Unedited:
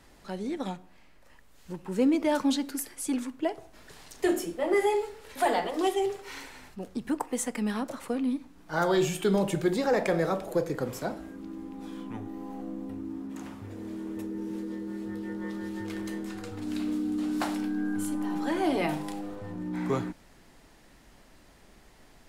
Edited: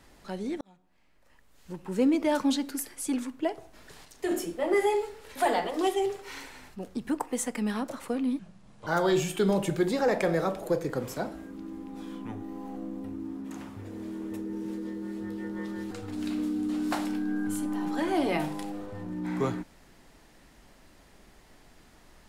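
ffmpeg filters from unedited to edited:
-filter_complex "[0:a]asplit=7[a][b][c][d][e][f][g];[a]atrim=end=0.61,asetpts=PTS-STARTPTS,afade=t=out:st=0.606:d=0.004:c=hsin[h];[b]atrim=start=0.61:end=4.052,asetpts=PTS-STARTPTS,afade=t=in:d=1.28[i];[c]atrim=start=4.048:end=4.312,asetpts=PTS-STARTPTS,volume=-5dB[j];[d]atrim=start=4.308:end=8.394[k];[e]atrim=start=8.39:end=8.72,asetpts=PTS-STARTPTS,asetrate=30429,aresample=44100,atrim=end_sample=21091,asetpts=PTS-STARTPTS[l];[f]atrim=start=8.716:end=15.762[m];[g]atrim=start=16.398[n];[h][i]concat=n=2:v=0:a=1[o];[o][j]acrossfade=d=0.004:c1=hsin:c2=hsin[p];[p][k]acrossfade=d=0.004:c1=hsin:c2=hsin[q];[q][l]acrossfade=d=0.004:c1=hsin:c2=hsin[r];[r][m]acrossfade=d=0.004:c1=hsin:c2=hsin[s];[s][n]acrossfade=d=0.004:c1=hsin:c2=hsin"

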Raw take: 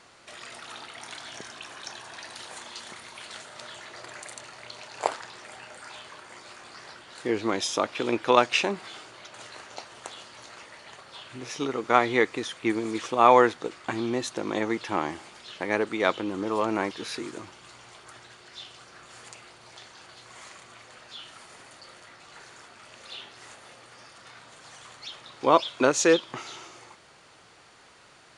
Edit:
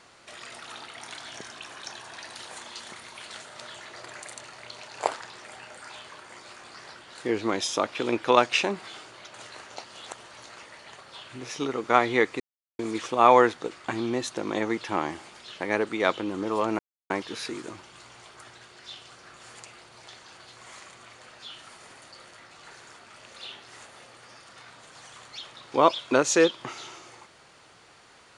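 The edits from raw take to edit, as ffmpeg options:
-filter_complex "[0:a]asplit=6[a][b][c][d][e][f];[a]atrim=end=9.842[g];[b]atrim=start=9.838:end=10.342,asetpts=PTS-STARTPTS,areverse[h];[c]atrim=start=10.338:end=12.4,asetpts=PTS-STARTPTS,afade=t=out:st=2.058:d=0.004:c=hsin[i];[d]atrim=start=12.4:end=12.79,asetpts=PTS-STARTPTS,volume=0[j];[e]atrim=start=12.79:end=16.79,asetpts=PTS-STARTPTS,afade=t=in:d=0.004:c=hsin,afade=t=out:st=3.996:d=0.004:c=hsin,apad=pad_dur=0.31[k];[f]atrim=start=16.79,asetpts=PTS-STARTPTS,afade=t=in:d=0.004:c=hsin[l];[g][h]acrossfade=d=0.004:c1=hsin:c2=hsin[m];[i][j][k][l]concat=n=4:v=0:a=1[n];[m][n]acrossfade=d=0.004:c1=hsin:c2=hsin"

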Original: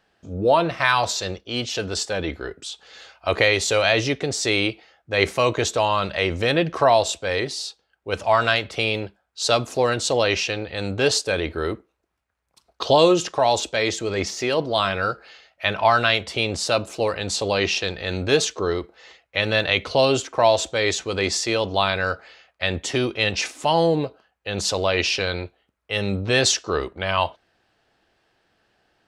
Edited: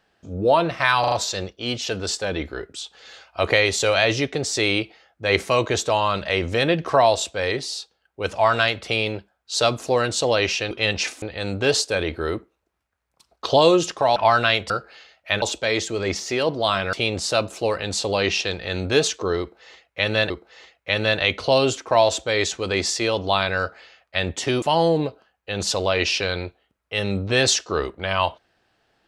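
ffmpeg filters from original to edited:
-filter_complex "[0:a]asplit=12[a][b][c][d][e][f][g][h][i][j][k][l];[a]atrim=end=1.042[m];[b]atrim=start=0.998:end=1.042[n];[c]atrim=start=0.998:end=1.042[o];[d]atrim=start=0.998:end=10.592[p];[e]atrim=start=23.088:end=23.602[q];[f]atrim=start=10.588:end=13.532[r];[g]atrim=start=15.758:end=16.302[s];[h]atrim=start=15.038:end=15.762[t];[i]atrim=start=13.528:end=15.042[u];[j]atrim=start=16.298:end=19.672[v];[k]atrim=start=18.768:end=23.092[w];[l]atrim=start=23.598[x];[m][n]acrossfade=d=0.004:c1=hsin:c2=hsin[y];[y][o]acrossfade=d=0.004:c1=hsin:c2=hsin[z];[z][p]acrossfade=d=0.004:c1=hsin:c2=hsin[aa];[aa][q]acrossfade=d=0.004:c1=hsin:c2=hsin[ab];[ab][r]acrossfade=d=0.004:c1=hsin:c2=hsin[ac];[ac][s]acrossfade=d=0.004:c1=hsin:c2=hsin[ad];[ad][t]acrossfade=d=0.004:c1=hsin:c2=hsin[ae];[ae][u]acrossfade=d=0.004:c1=hsin:c2=hsin[af];[af][v]acrossfade=d=0.004:c1=hsin:c2=hsin[ag];[ag][w]acrossfade=d=0.004:c1=hsin:c2=hsin[ah];[ah][x]acrossfade=d=0.004:c1=hsin:c2=hsin"

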